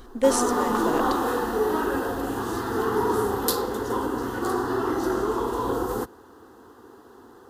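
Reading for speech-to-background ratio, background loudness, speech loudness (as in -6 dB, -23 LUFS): -1.5 dB, -25.5 LUFS, -27.0 LUFS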